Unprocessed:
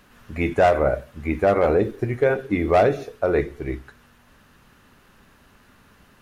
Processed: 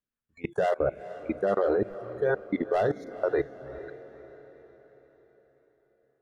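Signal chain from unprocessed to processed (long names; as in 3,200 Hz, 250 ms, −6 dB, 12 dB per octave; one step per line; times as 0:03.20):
noise reduction from a noise print of the clip's start 29 dB
rotating-speaker cabinet horn 5 Hz, later 0.65 Hz, at 0:02.36
output level in coarse steps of 24 dB
feedback delay with all-pass diffusion 464 ms, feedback 48%, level −14.5 dB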